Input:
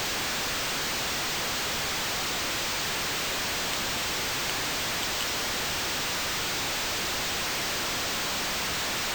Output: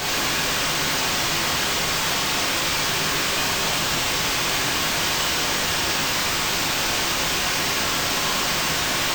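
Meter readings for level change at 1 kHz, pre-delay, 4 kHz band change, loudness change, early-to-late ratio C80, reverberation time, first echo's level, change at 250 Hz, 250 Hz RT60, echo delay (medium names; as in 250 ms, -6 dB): +7.5 dB, 7 ms, +7.0 dB, +7.0 dB, 5.5 dB, 0.90 s, no echo, +8.0 dB, 0.90 s, no echo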